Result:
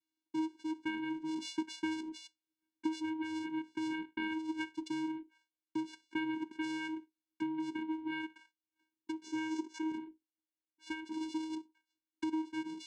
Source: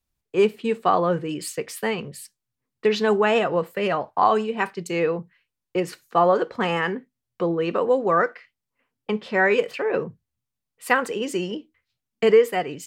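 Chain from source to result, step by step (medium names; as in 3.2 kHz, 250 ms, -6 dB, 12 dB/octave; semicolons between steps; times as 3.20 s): compression 6:1, threshold -29 dBFS, peak gain reduction 17 dB; vocoder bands 4, square 316 Hz; 9.24–9.92 s: fifteen-band graphic EQ 400 Hz +9 dB, 1 kHz +3 dB, 6.3 kHz +10 dB; gain riding 0.5 s; high-order bell 590 Hz -9 dB 2.6 oct; trim +3.5 dB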